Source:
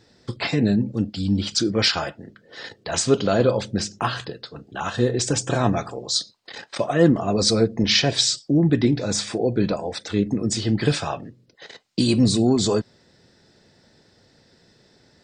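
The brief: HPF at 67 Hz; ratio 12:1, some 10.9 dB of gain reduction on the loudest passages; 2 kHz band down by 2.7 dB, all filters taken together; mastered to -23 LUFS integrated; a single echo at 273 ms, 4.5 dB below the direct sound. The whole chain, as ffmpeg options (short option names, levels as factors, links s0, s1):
-af "highpass=67,equalizer=f=2000:t=o:g=-3.5,acompressor=threshold=0.0708:ratio=12,aecho=1:1:273:0.596,volume=1.78"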